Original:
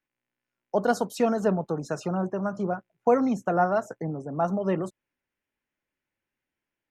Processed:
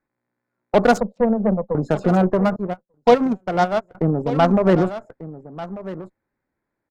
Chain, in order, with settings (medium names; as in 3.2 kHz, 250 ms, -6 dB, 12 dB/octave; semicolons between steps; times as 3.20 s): local Wiener filter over 15 samples; 1.00–1.75 s: two resonant band-passes 330 Hz, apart 1.3 oct; in parallel at -3 dB: peak limiter -20 dBFS, peak gain reduction 9.5 dB; on the sum: Chebyshev shaper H 8 -22 dB, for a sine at -8.5 dBFS; on a send: delay 1192 ms -15.5 dB; 2.56–3.95 s: on the sum: upward expansion 2.5:1, over -33 dBFS; trim +6.5 dB